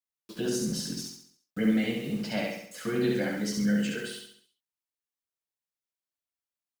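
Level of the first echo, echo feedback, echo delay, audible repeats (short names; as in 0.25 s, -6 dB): -3.0 dB, 46%, 68 ms, 5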